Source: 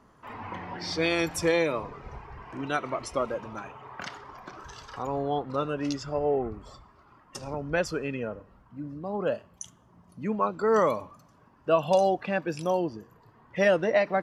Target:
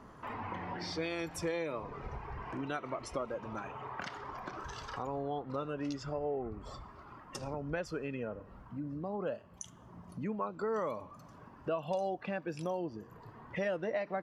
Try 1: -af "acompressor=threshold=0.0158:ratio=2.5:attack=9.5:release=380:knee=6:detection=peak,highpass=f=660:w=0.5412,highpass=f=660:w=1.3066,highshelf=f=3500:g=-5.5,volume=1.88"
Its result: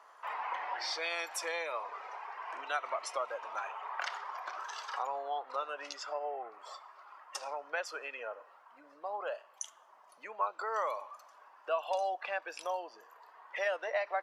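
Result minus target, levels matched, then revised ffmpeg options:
compression: peak gain reduction -5.5 dB; 500 Hz band -3.0 dB
-af "acompressor=threshold=0.00531:ratio=2.5:attack=9.5:release=380:knee=6:detection=peak,highshelf=f=3500:g=-5.5,volume=1.88"

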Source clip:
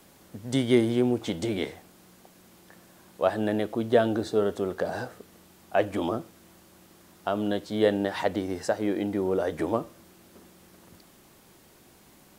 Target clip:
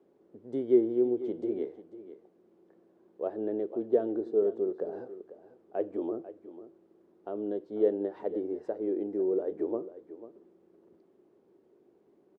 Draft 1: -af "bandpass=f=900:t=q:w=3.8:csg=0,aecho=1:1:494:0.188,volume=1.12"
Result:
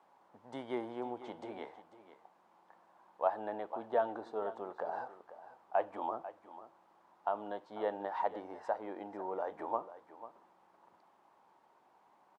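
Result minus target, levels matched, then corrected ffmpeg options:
1 kHz band +18.5 dB
-af "bandpass=f=390:t=q:w=3.8:csg=0,aecho=1:1:494:0.188,volume=1.12"

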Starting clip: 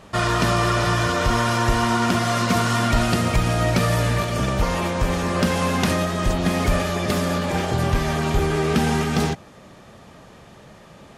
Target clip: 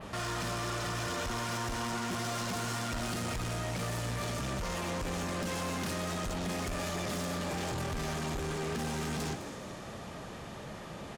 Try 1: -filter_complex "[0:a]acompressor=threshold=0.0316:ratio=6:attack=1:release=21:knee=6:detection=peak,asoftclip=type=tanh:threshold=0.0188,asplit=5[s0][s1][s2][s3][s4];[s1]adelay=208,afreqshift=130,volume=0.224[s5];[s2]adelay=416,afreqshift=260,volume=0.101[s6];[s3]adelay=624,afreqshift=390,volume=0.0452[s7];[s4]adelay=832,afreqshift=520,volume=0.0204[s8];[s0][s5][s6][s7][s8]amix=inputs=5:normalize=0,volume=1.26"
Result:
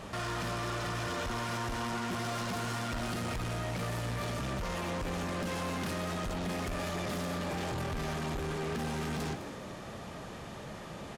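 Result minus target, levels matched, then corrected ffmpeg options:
8 kHz band -4.0 dB
-filter_complex "[0:a]acompressor=threshold=0.0316:ratio=6:attack=1:release=21:knee=6:detection=peak,adynamicequalizer=threshold=0.00158:dfrequency=7200:dqfactor=0.9:tfrequency=7200:tqfactor=0.9:attack=5:release=100:ratio=0.45:range=3:mode=boostabove:tftype=bell,asoftclip=type=tanh:threshold=0.0188,asplit=5[s0][s1][s2][s3][s4];[s1]adelay=208,afreqshift=130,volume=0.224[s5];[s2]adelay=416,afreqshift=260,volume=0.101[s6];[s3]adelay=624,afreqshift=390,volume=0.0452[s7];[s4]adelay=832,afreqshift=520,volume=0.0204[s8];[s0][s5][s6][s7][s8]amix=inputs=5:normalize=0,volume=1.26"

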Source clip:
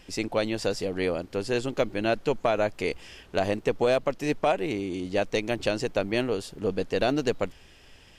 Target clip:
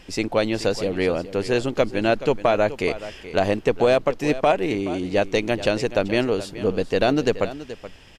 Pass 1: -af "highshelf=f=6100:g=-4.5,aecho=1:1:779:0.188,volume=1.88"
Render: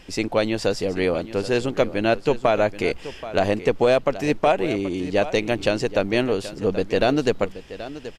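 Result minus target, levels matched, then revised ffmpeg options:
echo 353 ms late
-af "highshelf=f=6100:g=-4.5,aecho=1:1:426:0.188,volume=1.88"

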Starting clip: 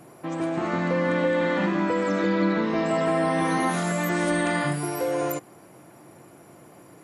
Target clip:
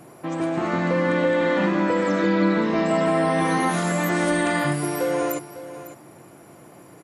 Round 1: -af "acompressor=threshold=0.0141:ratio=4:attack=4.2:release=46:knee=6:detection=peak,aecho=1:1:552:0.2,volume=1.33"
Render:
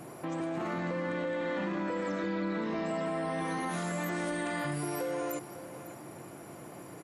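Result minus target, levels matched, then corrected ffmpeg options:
compression: peak gain reduction +15 dB
-af "aecho=1:1:552:0.2,volume=1.33"

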